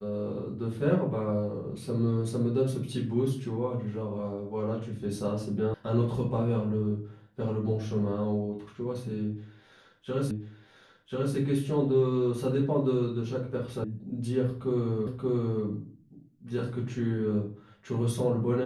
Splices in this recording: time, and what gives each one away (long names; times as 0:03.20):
0:05.74: cut off before it has died away
0:10.31: the same again, the last 1.04 s
0:13.84: cut off before it has died away
0:15.07: the same again, the last 0.58 s